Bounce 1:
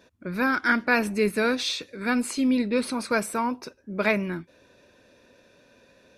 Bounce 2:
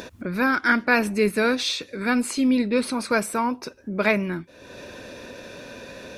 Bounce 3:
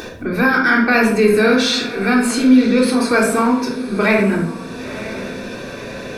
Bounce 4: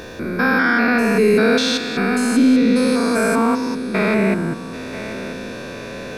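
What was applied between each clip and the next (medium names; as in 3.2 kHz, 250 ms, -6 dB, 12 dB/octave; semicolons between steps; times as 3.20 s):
upward compressor, threshold -28 dBFS; trim +2.5 dB
echo that smears into a reverb 989 ms, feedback 41%, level -16 dB; reverberation RT60 0.65 s, pre-delay 3 ms, DRR -2.5 dB; in parallel at 0 dB: peak limiter -13 dBFS, peak gain reduction 11 dB; on the sum: trim -1.5 dB
spectrogram pixelated in time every 200 ms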